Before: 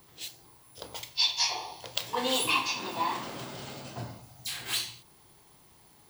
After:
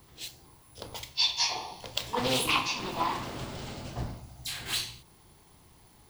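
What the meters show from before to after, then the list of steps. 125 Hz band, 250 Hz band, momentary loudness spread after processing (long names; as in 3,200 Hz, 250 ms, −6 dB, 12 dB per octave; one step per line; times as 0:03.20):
+5.5 dB, +2.0 dB, 17 LU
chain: sub-octave generator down 1 octave, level −3 dB
low-shelf EQ 210 Hz +4.5 dB
highs frequency-modulated by the lows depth 0.45 ms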